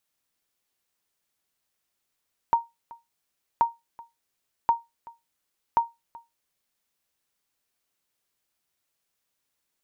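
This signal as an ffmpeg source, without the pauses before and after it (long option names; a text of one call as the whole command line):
ffmpeg -f lavfi -i "aevalsrc='0.251*(sin(2*PI*930*mod(t,1.08))*exp(-6.91*mod(t,1.08)/0.2)+0.0708*sin(2*PI*930*max(mod(t,1.08)-0.38,0))*exp(-6.91*max(mod(t,1.08)-0.38,0)/0.2))':duration=4.32:sample_rate=44100" out.wav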